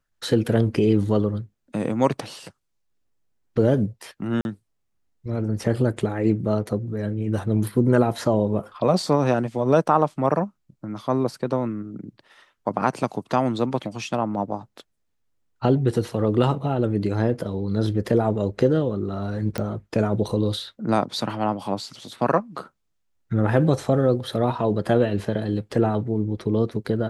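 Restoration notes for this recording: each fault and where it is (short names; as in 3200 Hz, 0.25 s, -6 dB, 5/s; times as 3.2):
4.41–4.45 gap 41 ms
19.58 pop -13 dBFS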